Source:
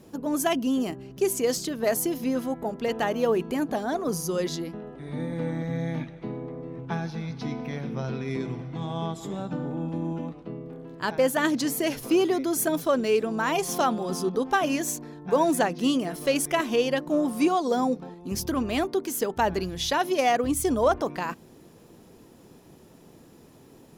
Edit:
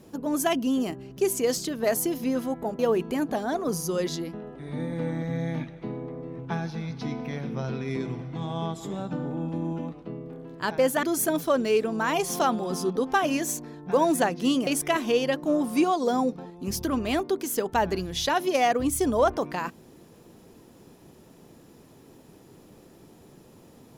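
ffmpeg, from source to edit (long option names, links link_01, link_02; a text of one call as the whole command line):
ffmpeg -i in.wav -filter_complex "[0:a]asplit=4[link_01][link_02][link_03][link_04];[link_01]atrim=end=2.792[link_05];[link_02]atrim=start=3.188:end=11.432[link_06];[link_03]atrim=start=12.418:end=16.062[link_07];[link_04]atrim=start=16.308[link_08];[link_05][link_06]acrossfade=duration=0.004:curve1=hsin:curve2=hsin[link_09];[link_09][link_07]acrossfade=duration=0.004:curve1=hsin:curve2=hsin[link_10];[link_10][link_08]acrossfade=duration=0.004:curve1=hsin:curve2=hsin" out.wav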